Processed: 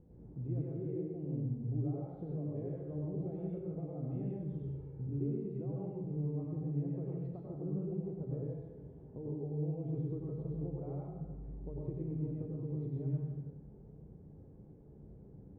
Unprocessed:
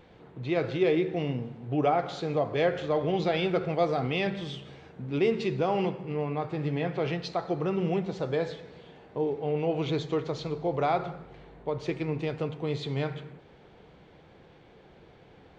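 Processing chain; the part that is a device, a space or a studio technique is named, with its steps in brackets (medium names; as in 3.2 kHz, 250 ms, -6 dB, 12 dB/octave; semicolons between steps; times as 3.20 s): 4.50–5.07 s: comb 2.2 ms; television next door (compression 4:1, threshold -35 dBFS, peak gain reduction 13 dB; low-pass 250 Hz 12 dB/octave; reverberation RT60 0.70 s, pre-delay 90 ms, DRR -4 dB); trim -1 dB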